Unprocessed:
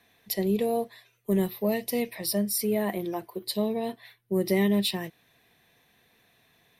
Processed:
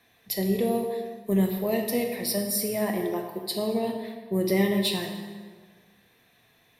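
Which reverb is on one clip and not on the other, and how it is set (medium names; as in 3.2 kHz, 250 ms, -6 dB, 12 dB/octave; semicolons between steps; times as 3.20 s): plate-style reverb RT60 1.6 s, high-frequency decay 0.7×, DRR 2.5 dB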